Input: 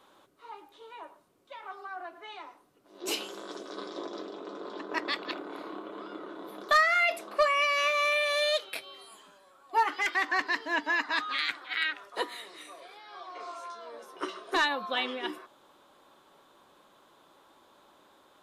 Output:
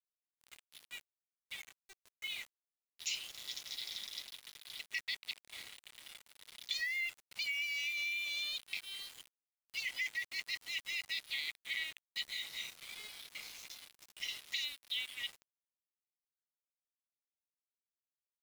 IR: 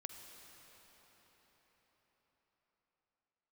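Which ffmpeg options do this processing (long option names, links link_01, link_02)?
-af "afftfilt=real='re*between(b*sr/4096,1900,7400)':imag='im*between(b*sr/4096,1900,7400)':win_size=4096:overlap=0.75,acompressor=threshold=-44dB:ratio=10,aeval=exprs='val(0)*gte(abs(val(0)),0.002)':channel_layout=same,volume=8dB"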